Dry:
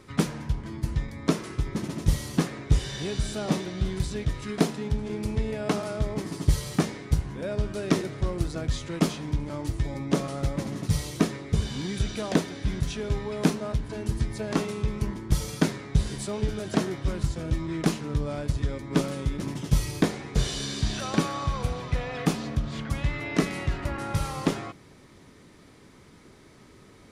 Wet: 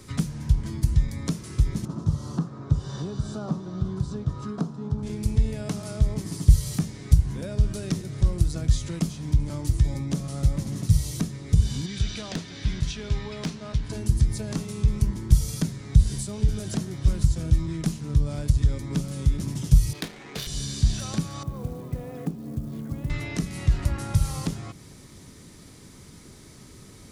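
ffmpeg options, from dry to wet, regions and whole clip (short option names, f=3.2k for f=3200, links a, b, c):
-filter_complex "[0:a]asettb=1/sr,asplit=3[a][b][c];[a]atrim=end=1.854[d];[b]atrim=start=1.85:end=5.03,asetpts=PTS-STARTPTS,afade=t=in:d=0.004:c=qsin,afade=t=out:st=3.176:d=0.004:c=qsin,highpass=120,lowpass=5.5k,highshelf=f=1.6k:t=q:w=3:g=-9[e];[c]atrim=start=5.026[f];[d][e]acrossfade=d=0.004:c1=hsin:c2=qsin[g];[g][f]acrossfade=d=0.004:c1=qsin:c2=hsin,asettb=1/sr,asplit=3[h][i][j];[h]atrim=end=11.864[k];[i]atrim=start=11.86:end=13.9,asetpts=PTS-STARTPTS,afade=t=in:d=0.004:c=qsin,afade=t=out:st=2.036:d=0.004:c=qsin,lowpass=3.7k,volume=15dB,asoftclip=hard,volume=-15dB,tiltshelf=f=1.2k:g=-5.5[l];[j]atrim=start=13.896[m];[k][l]acrossfade=d=0.004:c1=hsin:c2=qsin[n];[n][m]acrossfade=d=0.004:c1=qsin:c2=hsin,asettb=1/sr,asplit=3[o][p][q];[o]atrim=end=19.934[r];[p]atrim=start=19.93:end=20.47,asetpts=PTS-STARTPTS,afade=t=in:d=0.004:c=qsin,afade=t=out:st=0.536:d=0.004:c=qsin,highpass=330,equalizer=f=3.1k:t=o:w=2.3:g=11,adynamicsmooth=sensitivity=2.5:basefreq=1.2k[s];[q]atrim=start=20.466[t];[r][s]acrossfade=d=0.004:c1=hsin:c2=qsin[u];[u][t]acrossfade=d=0.004:c1=qsin:c2=hsin,asettb=1/sr,asplit=3[v][w][x];[v]atrim=end=21.434[y];[w]atrim=start=21.43:end=23.1,asetpts=PTS-STARTPTS,afade=t=in:d=0.004:c=qsin,afade=t=out:st=1.666:d=0.004:c=qsin,bandpass=f=320:t=q:w=1.1,acrusher=bits=8:mode=log:mix=0:aa=0.000001[z];[x]atrim=start=23.096[aa];[y][z]acrossfade=d=0.004:c1=hsin:c2=qsin[ab];[ab][aa]acrossfade=d=0.004:c1=qsin:c2=hsin,bass=f=250:g=8,treble=f=4k:g=13,acrossover=split=150[ac][ad];[ad]acompressor=threshold=-33dB:ratio=5[ae];[ac][ae]amix=inputs=2:normalize=0"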